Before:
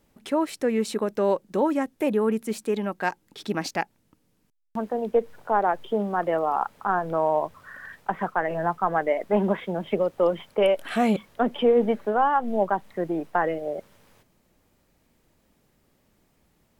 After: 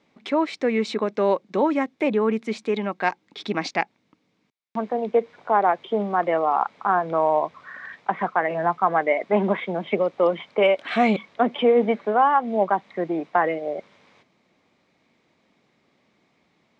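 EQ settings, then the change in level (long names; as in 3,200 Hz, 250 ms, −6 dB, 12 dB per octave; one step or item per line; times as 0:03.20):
loudspeaker in its box 190–6,100 Hz, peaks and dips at 1,100 Hz +5 dB, 2,200 Hz +10 dB, 3,700 Hz +6 dB
low-shelf EQ 360 Hz +4 dB
parametric band 720 Hz +3.5 dB 0.27 octaves
0.0 dB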